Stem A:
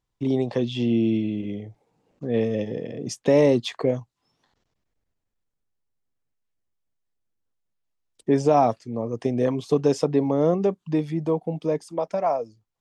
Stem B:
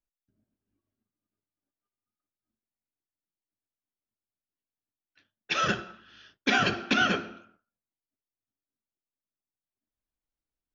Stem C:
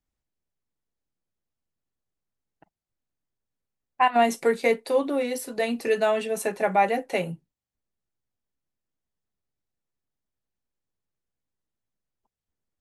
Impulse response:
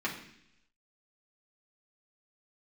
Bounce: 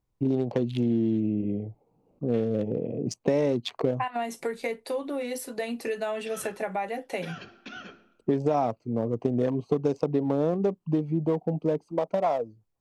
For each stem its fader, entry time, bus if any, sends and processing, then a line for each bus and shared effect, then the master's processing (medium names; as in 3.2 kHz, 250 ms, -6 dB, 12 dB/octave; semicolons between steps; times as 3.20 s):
+2.5 dB, 0.00 s, no send, local Wiener filter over 25 samples; compression 5:1, threshold -24 dBFS, peak gain reduction 10 dB
-18.0 dB, 0.75 s, no send, none
-2.0 dB, 0.00 s, no send, compression 6:1, threshold -25 dBFS, peak gain reduction 10 dB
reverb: none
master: none